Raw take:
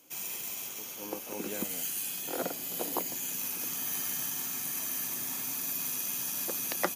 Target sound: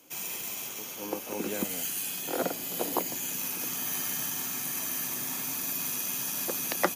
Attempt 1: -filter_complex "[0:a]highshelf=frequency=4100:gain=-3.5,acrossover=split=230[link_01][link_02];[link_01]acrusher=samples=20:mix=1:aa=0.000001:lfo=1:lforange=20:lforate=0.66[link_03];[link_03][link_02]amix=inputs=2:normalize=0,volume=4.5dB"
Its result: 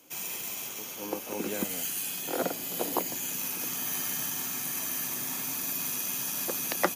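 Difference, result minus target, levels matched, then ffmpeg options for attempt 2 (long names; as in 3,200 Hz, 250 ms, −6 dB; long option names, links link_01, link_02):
sample-and-hold swept by an LFO: distortion +15 dB
-filter_complex "[0:a]highshelf=frequency=4100:gain=-3.5,acrossover=split=230[link_01][link_02];[link_01]acrusher=samples=4:mix=1:aa=0.000001:lfo=1:lforange=4:lforate=0.66[link_03];[link_03][link_02]amix=inputs=2:normalize=0,volume=4.5dB"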